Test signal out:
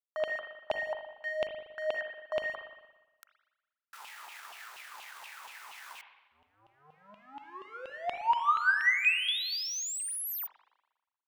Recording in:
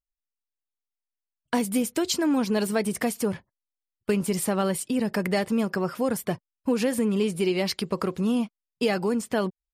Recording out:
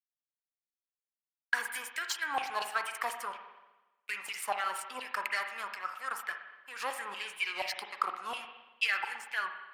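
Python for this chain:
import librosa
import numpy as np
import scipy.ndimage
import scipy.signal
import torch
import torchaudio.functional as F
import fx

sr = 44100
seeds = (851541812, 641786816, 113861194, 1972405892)

y = fx.power_curve(x, sr, exponent=1.4)
y = fx.filter_lfo_highpass(y, sr, shape='saw_down', hz=4.2, low_hz=790.0, high_hz=2900.0, q=6.2)
y = fx.rev_spring(y, sr, rt60_s=1.1, pass_ms=(39, 58), chirp_ms=65, drr_db=6.0)
y = y * 10.0 ** (-6.0 / 20.0)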